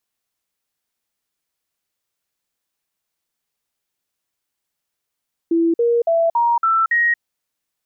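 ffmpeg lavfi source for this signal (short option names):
-f lavfi -i "aevalsrc='0.224*clip(min(mod(t,0.28),0.23-mod(t,0.28))/0.005,0,1)*sin(2*PI*333*pow(2,floor(t/0.28)/2)*mod(t,0.28))':d=1.68:s=44100"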